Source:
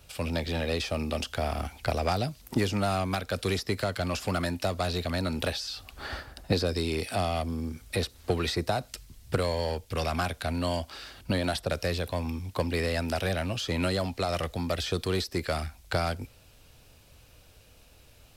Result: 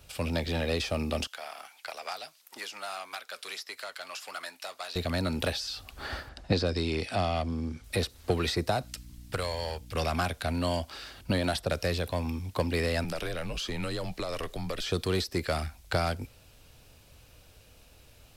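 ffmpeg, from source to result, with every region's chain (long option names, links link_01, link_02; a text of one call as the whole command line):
ffmpeg -i in.wav -filter_complex "[0:a]asettb=1/sr,asplit=3[link_01][link_02][link_03];[link_01]atrim=end=1.274[link_04];[link_02]atrim=start=1.27:end=4.96,asetpts=PTS-STARTPTS,afade=type=in:duration=0.004:curve=qsin,afade=type=out:start_time=3.686:duration=0.004:curve=qsin,highpass=980,flanger=delay=2:depth=5.3:regen=-70:speed=1.6:shape=triangular[link_05];[link_03]atrim=start=4.956[link_06];[link_04][link_05]acrossfade=duration=0.004:curve1=hsin:curve2=qsin[link_07];[link_07][link_06]acrossfade=duration=0.004:curve1=qsin:curve2=hsin,asettb=1/sr,asplit=3[link_08][link_09][link_10];[link_08]atrim=end=6.294[link_11];[link_09]atrim=start=6.29:end=7.84,asetpts=PTS-STARTPTS,afade=type=in:duration=0.004:curve=qsin,afade=type=out:start_time=1.546:duration=0.004:curve=qsin,lowpass=6200,equalizer=frequency=430:width=6.1:gain=-2.5[link_12];[link_10]atrim=start=7.836[link_13];[link_11][link_12]acrossfade=duration=0.004:curve1=hsin:curve2=qsin[link_14];[link_14][link_13]acrossfade=duration=0.004:curve1=qsin:curve2=hsin,asettb=1/sr,asplit=3[link_15][link_16][link_17];[link_15]atrim=end=8.834[link_18];[link_16]atrim=start=8.83:end=9.95,asetpts=PTS-STARTPTS,afade=type=in:duration=0.004:curve=qsin,afade=type=out:start_time=1.116:duration=0.004:curve=qsin,equalizer=frequency=220:width_type=o:width=2.4:gain=-11.5,aeval=exprs='val(0)+0.00447*(sin(2*PI*60*n/s)+sin(2*PI*2*60*n/s)/2+sin(2*PI*3*60*n/s)/3+sin(2*PI*4*60*n/s)/4+sin(2*PI*5*60*n/s)/5)':channel_layout=same[link_19];[link_17]atrim=start=9.946[link_20];[link_18][link_19]acrossfade=duration=0.004:curve1=hsin:curve2=qsin[link_21];[link_21][link_20]acrossfade=duration=0.004:curve1=qsin:curve2=hsin,asettb=1/sr,asplit=3[link_22][link_23][link_24];[link_22]atrim=end=13.044[link_25];[link_23]atrim=start=13.04:end=14.89,asetpts=PTS-STARTPTS,afade=type=in:duration=0.004:curve=qsin,afade=type=out:start_time=1.846:duration=0.004:curve=qsin,acompressor=threshold=-30dB:ratio=3:attack=3.2:release=140:knee=1:detection=peak,afreqshift=-73[link_26];[link_24]atrim=start=14.886[link_27];[link_25][link_26]acrossfade=duration=0.004:curve1=hsin:curve2=qsin[link_28];[link_28][link_27]acrossfade=duration=0.004:curve1=qsin:curve2=hsin" out.wav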